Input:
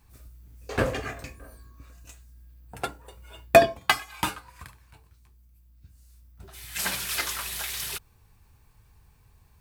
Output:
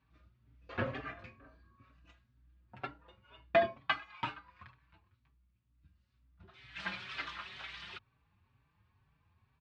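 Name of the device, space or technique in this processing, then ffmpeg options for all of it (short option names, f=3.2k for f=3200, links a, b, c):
barber-pole flanger into a guitar amplifier: -filter_complex "[0:a]asplit=2[a][b];[b]adelay=4.8,afreqshift=2.1[c];[a][c]amix=inputs=2:normalize=1,asoftclip=type=tanh:threshold=-12dB,highpass=93,equalizer=f=450:t=q:w=4:g=-8,equalizer=f=770:t=q:w=4:g=-4,equalizer=f=1.2k:t=q:w=4:g=3,lowpass=f=3.5k:w=0.5412,lowpass=f=3.5k:w=1.3066,volume=-5.5dB"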